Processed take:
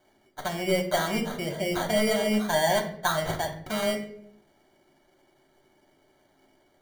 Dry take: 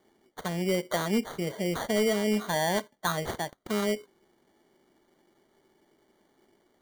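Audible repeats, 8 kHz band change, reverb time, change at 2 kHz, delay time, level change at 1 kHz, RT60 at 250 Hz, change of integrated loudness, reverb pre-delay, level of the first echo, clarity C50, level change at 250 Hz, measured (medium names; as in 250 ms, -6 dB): no echo, +2.5 dB, 0.65 s, +4.0 dB, no echo, +4.0 dB, 1.0 s, +2.5 dB, 3 ms, no echo, 10.0 dB, +0.5 dB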